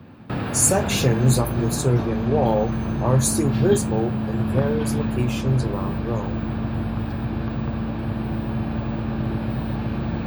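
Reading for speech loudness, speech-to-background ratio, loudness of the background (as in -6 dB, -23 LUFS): -23.0 LUFS, 3.0 dB, -26.0 LUFS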